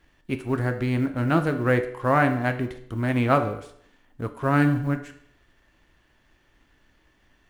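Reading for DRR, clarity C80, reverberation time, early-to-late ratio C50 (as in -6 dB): 7.0 dB, 14.5 dB, 0.65 s, 11.5 dB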